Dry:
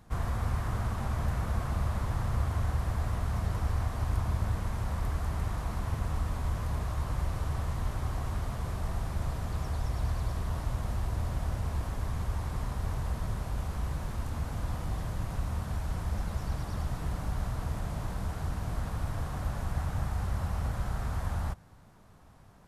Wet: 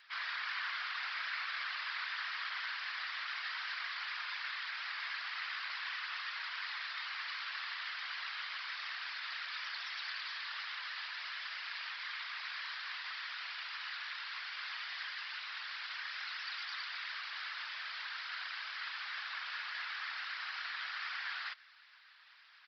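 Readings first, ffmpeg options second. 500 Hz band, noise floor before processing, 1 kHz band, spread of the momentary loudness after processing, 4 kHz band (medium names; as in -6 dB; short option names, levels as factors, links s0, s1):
under -25 dB, -54 dBFS, -5.0 dB, 3 LU, +11.0 dB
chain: -af "asuperpass=centerf=4200:order=8:qfactor=0.52,aresample=11025,aresample=44100,afftfilt=real='hypot(re,im)*cos(2*PI*random(0))':imag='hypot(re,im)*sin(2*PI*random(1))':win_size=512:overlap=0.75,volume=7.5"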